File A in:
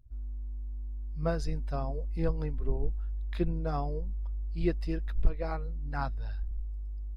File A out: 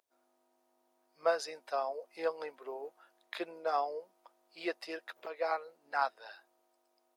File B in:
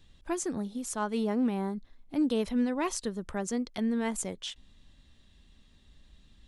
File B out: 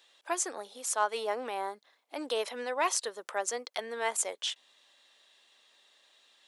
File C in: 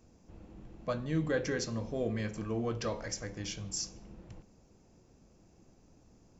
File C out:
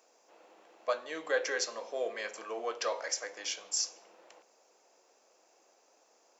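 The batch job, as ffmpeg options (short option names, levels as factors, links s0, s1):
-af "highpass=f=520:w=0.5412,highpass=f=520:w=1.3066,volume=1.78"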